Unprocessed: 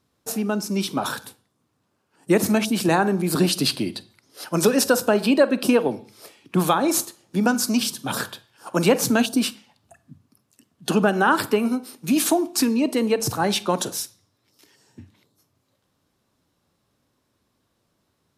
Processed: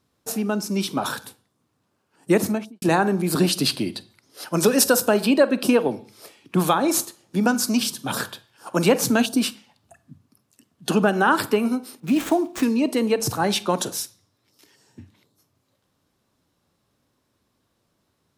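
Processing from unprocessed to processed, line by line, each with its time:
2.33–2.82 studio fade out
4.71–5.25 high shelf 6600 Hz +7.5 dB
12–12.63 median filter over 9 samples

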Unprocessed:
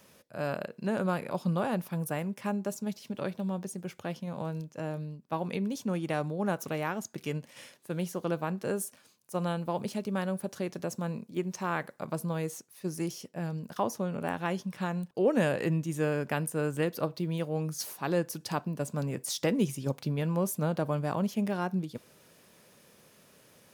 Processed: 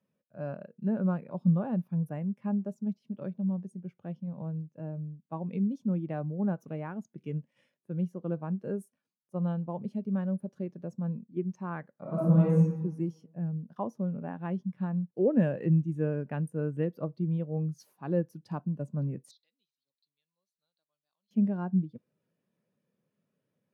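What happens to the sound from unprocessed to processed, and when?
12.01–12.7 reverb throw, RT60 1.6 s, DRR -7 dB
19.31–21.31 band-pass 4100 Hz, Q 8.4
whole clip: HPF 130 Hz; tone controls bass +7 dB, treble -6 dB; spectral expander 1.5:1

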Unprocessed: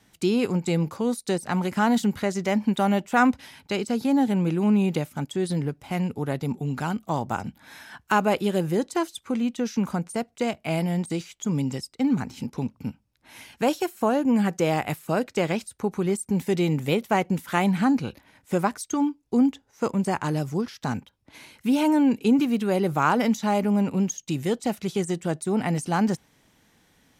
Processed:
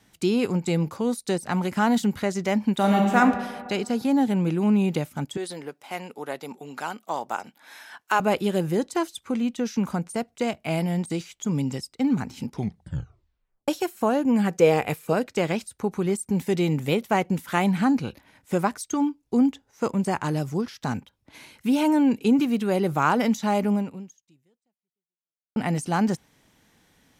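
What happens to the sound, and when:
2.76–3.17 reverb throw, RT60 1.7 s, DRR 0.5 dB
5.37–8.2 HPF 460 Hz
12.49 tape stop 1.19 s
14.54–15.13 small resonant body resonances 470/2400 Hz, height 11 dB
23.73–25.56 fade out exponential

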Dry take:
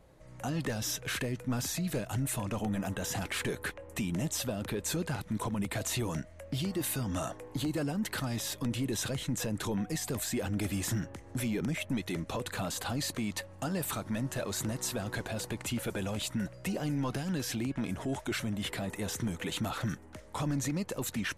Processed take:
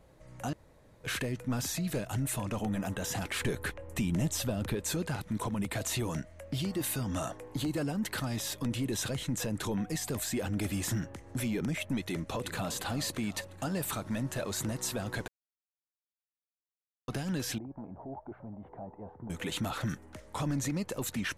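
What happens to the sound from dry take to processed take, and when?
0.53–1.04 room tone
3.41–4.75 low shelf 130 Hz +8.5 dB
12.08–12.74 echo throw 0.35 s, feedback 60%, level -13 dB
15.28–17.08 mute
17.58–19.3 ladder low-pass 930 Hz, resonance 60%

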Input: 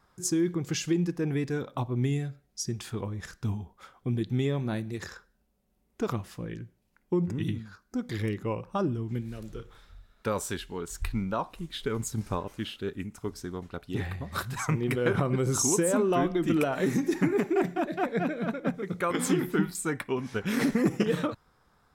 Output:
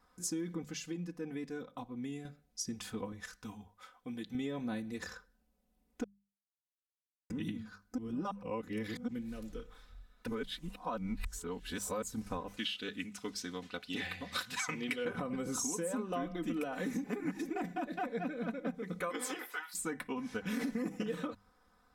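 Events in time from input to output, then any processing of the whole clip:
0.64–2.25 gain -7 dB
3.12–4.35 low shelf 500 Hz -10 dB
6.04–7.3 mute
7.98–9.08 reverse
10.27–12.02 reverse
12.57–15.05 weighting filter D
17.04–17.49 reverse
19.09–19.73 HPF 250 Hz -> 1000 Hz 24 dB/oct
whole clip: notches 50/100/150/200 Hz; comb 4 ms, depth 77%; compressor 4:1, threshold -29 dBFS; gain -5.5 dB

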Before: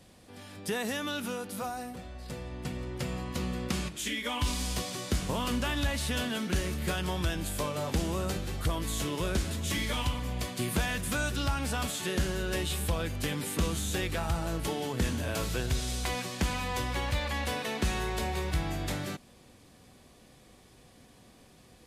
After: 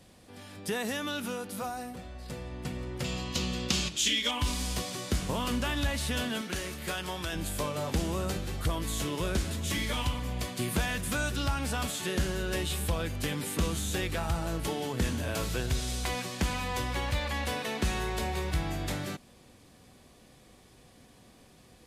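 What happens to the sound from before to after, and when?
3.04–4.31 band shelf 4400 Hz +10 dB
6.41–7.33 low shelf 300 Hz -10 dB

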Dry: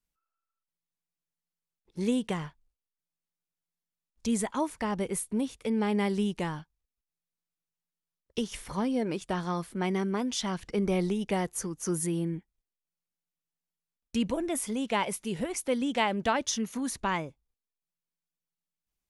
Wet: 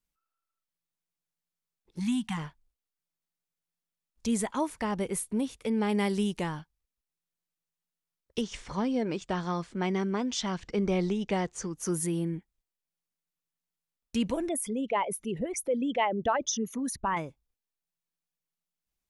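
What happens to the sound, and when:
1.99–2.37 spectral delete 270–750 Hz
5.89–6.4 high shelf 4100 Hz +5.5 dB
8.41–11.75 steep low-pass 7800 Hz
14.49–17.17 formant sharpening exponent 2

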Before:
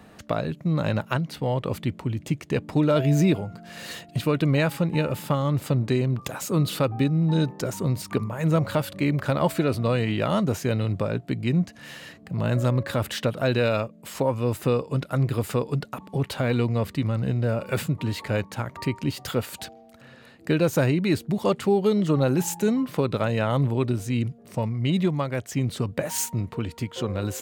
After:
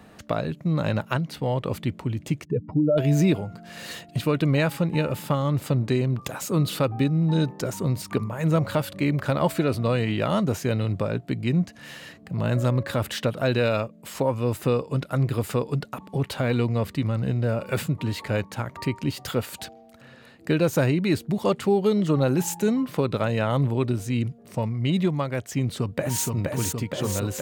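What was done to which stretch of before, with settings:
2.45–2.98 spectral contrast raised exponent 2.3
25.59–26.25 echo throw 0.47 s, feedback 75%, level -3 dB

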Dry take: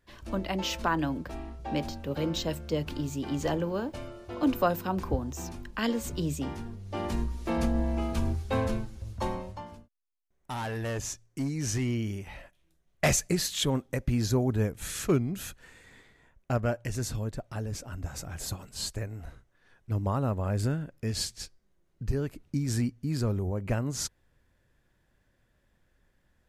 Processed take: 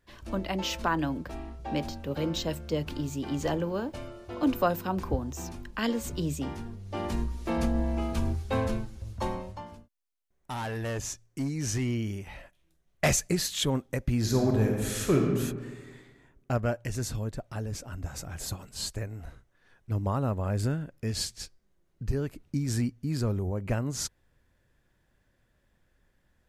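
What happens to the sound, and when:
14.18–15.27 reverb throw, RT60 1.5 s, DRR 0.5 dB

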